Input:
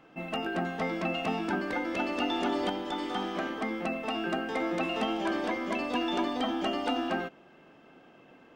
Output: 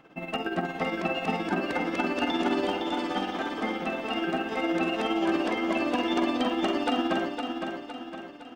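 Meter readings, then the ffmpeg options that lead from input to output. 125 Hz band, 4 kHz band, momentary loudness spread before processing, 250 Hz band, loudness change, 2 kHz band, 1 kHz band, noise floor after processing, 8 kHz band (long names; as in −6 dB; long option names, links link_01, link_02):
+2.0 dB, +2.5 dB, 4 LU, +4.0 dB, +3.0 dB, +3.0 dB, +2.5 dB, −42 dBFS, +2.5 dB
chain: -filter_complex "[0:a]asplit=2[link_01][link_02];[link_02]adelay=48,volume=-12dB[link_03];[link_01][link_03]amix=inputs=2:normalize=0,tremolo=f=17:d=0.59,aecho=1:1:511|1022|1533|2044|2555|3066:0.501|0.241|0.115|0.0554|0.0266|0.0128,volume=4dB"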